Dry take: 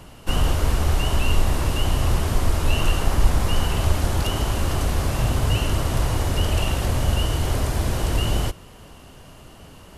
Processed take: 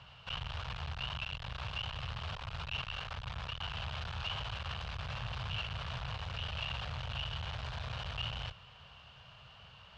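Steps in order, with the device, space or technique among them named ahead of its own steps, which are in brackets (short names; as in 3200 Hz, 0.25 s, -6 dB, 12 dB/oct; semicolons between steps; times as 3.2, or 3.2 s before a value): scooped metal amplifier (tube stage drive 26 dB, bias 0.4; speaker cabinet 87–3600 Hz, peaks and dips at 130 Hz +5 dB, 330 Hz -8 dB, 2000 Hz -7 dB; passive tone stack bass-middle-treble 10-0-10); gain +2.5 dB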